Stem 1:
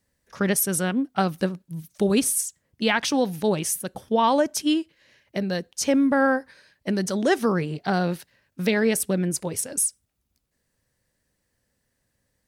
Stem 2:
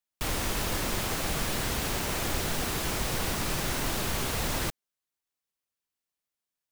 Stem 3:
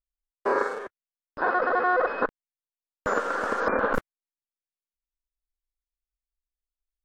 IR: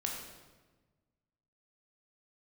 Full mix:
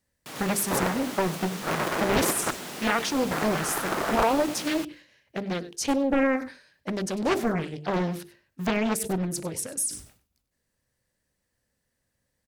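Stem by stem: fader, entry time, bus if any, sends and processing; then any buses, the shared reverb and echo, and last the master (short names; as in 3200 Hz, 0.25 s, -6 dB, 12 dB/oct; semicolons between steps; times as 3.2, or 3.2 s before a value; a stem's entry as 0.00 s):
-3.5 dB, 0.00 s, no send, echo send -16.5 dB, notches 50/100/150/200/250/300/350/400/450 Hz; sustainer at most 130 dB/s
-3.0 dB, 0.05 s, no send, echo send -3.5 dB, HPF 150 Hz 24 dB/oct; auto duck -9 dB, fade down 0.55 s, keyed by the first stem
-4.0 dB, 0.25 s, no send, no echo send, cycle switcher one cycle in 3, inverted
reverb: off
echo: echo 98 ms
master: Doppler distortion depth 0.88 ms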